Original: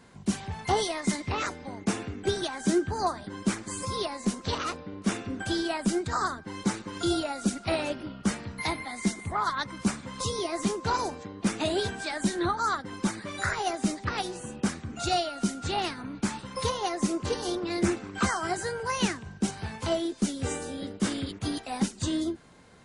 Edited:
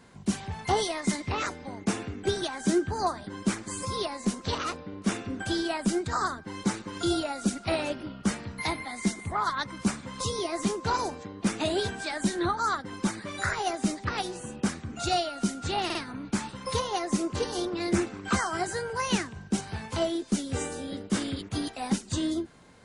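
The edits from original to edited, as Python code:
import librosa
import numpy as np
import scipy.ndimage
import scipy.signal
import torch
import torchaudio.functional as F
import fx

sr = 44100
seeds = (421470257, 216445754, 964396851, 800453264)

y = fx.edit(x, sr, fx.stutter(start_s=15.85, slice_s=0.05, count=3), tone=tone)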